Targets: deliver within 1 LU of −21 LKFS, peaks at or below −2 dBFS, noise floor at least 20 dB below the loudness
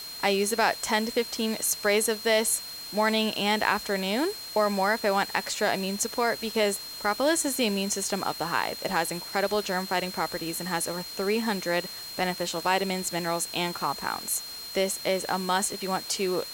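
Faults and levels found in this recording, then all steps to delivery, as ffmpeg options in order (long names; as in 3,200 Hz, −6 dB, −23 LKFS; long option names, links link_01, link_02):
interfering tone 4,200 Hz; level of the tone −38 dBFS; background noise floor −39 dBFS; target noise floor −47 dBFS; integrated loudness −27.0 LKFS; sample peak −7.0 dBFS; target loudness −21.0 LKFS
→ -af "bandreject=frequency=4200:width=30"
-af "afftdn=noise_reduction=8:noise_floor=-39"
-af "volume=6dB,alimiter=limit=-2dB:level=0:latency=1"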